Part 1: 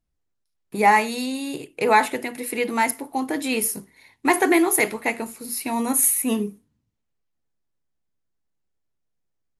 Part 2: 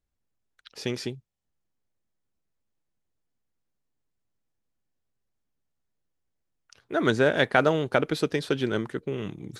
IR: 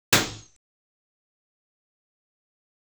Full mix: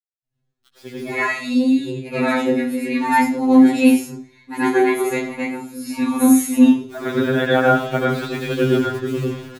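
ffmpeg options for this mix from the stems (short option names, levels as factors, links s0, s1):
-filter_complex "[0:a]lowshelf=f=390:g=4,adelay=250,volume=0.708,asplit=2[s0][s1];[s1]volume=0.299[s2];[1:a]acrossover=split=160 4100:gain=0.158 1 0.251[s3][s4][s5];[s3][s4][s5]amix=inputs=3:normalize=0,acrusher=bits=6:mix=0:aa=0.000001,volume=1.33,asplit=2[s6][s7];[s7]volume=0.0944[s8];[2:a]atrim=start_sample=2205[s9];[s2][s8]amix=inputs=2:normalize=0[s10];[s10][s9]afir=irnorm=-1:irlink=0[s11];[s0][s6][s11]amix=inputs=3:normalize=0,dynaudnorm=f=100:g=17:m=3.55,afftfilt=real='re*2.45*eq(mod(b,6),0)':imag='im*2.45*eq(mod(b,6),0)':win_size=2048:overlap=0.75"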